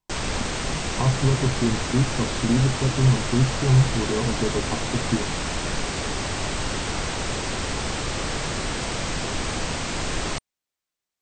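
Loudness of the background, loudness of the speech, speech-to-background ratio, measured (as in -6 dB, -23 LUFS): -27.5 LUFS, -23.5 LUFS, 4.0 dB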